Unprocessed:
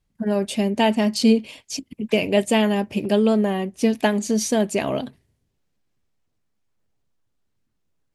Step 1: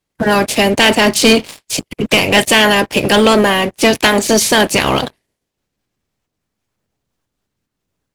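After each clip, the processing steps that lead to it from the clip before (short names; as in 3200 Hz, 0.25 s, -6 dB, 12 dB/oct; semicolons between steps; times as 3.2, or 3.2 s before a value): spectral limiter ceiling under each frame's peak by 20 dB; sample leveller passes 3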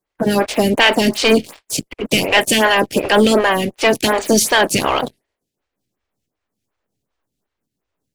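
photocell phaser 2.7 Hz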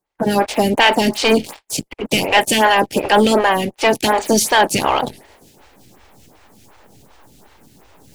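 bell 850 Hz +7 dB 0.33 oct; reverse; upward compressor, threshold -21 dBFS; reverse; gain -1.5 dB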